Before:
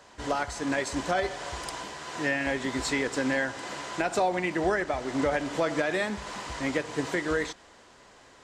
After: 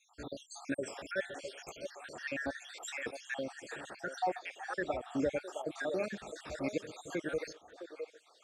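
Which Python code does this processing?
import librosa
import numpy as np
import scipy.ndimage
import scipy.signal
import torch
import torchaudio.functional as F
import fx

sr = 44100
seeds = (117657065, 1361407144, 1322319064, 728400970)

y = fx.spec_dropout(x, sr, seeds[0], share_pct=70)
y = fx.notch_comb(y, sr, f0_hz=1000.0)
y = fx.echo_stepped(y, sr, ms=661, hz=550.0, octaves=1.4, feedback_pct=70, wet_db=-6)
y = F.gain(torch.from_numpy(y), -4.5).numpy()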